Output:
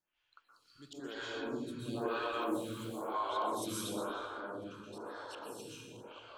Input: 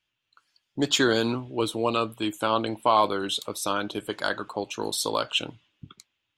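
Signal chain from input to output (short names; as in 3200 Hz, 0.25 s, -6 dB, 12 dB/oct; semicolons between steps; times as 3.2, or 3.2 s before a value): reverse delay 0.516 s, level -2 dB; 3.88–5.3 LPF 1200 Hz -> 2500 Hz 6 dB/oct; auto swell 0.605 s; compressor 2:1, threshold -45 dBFS, peak gain reduction 14 dB; 1.92–2.87 crackle 56/s -39 dBFS; plate-style reverb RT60 2.8 s, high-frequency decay 0.45×, pre-delay 0.11 s, DRR -7 dB; photocell phaser 1 Hz; gain -3 dB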